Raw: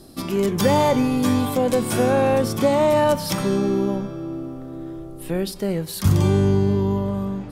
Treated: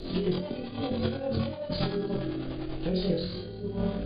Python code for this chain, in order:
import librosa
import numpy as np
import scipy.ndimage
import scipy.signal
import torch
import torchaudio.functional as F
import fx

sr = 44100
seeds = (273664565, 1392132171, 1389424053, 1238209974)

y = x + 0.5 * 10.0 ** (-30.5 / 20.0) * np.sign(x)
y = fx.over_compress(y, sr, threshold_db=-22.0, ratio=-0.5)
y = fx.brickwall_lowpass(y, sr, high_hz=4900.0)
y = fx.high_shelf(y, sr, hz=3700.0, db=-7.0)
y = fx.room_flutter(y, sr, wall_m=7.7, rt60_s=1.1)
y = fx.rotary_switch(y, sr, hz=5.5, then_hz=1.2, switch_at_s=4.88)
y = fx.graphic_eq(y, sr, hz=(125, 250, 1000, 2000), db=(-6, -8, -10, -8))
y = y + 10.0 ** (-19.5 / 20.0) * np.pad(y, (int(606 * sr / 1000.0), 0))[:len(y)]
y = fx.stretch_grains(y, sr, factor=0.54, grain_ms=54.0)